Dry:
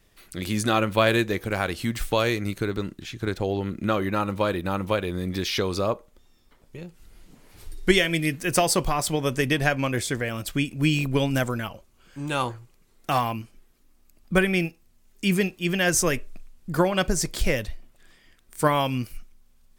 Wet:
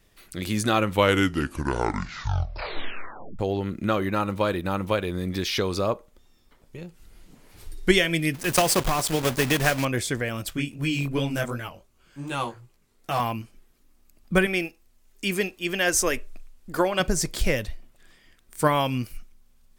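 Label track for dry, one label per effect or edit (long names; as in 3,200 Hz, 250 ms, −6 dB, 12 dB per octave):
0.780000	0.780000	tape stop 2.61 s
8.340000	9.850000	one scale factor per block 3 bits
10.500000	13.200000	chorus effect 2.7 Hz, delay 15 ms, depth 6.6 ms
14.460000	17.000000	parametric band 150 Hz −14 dB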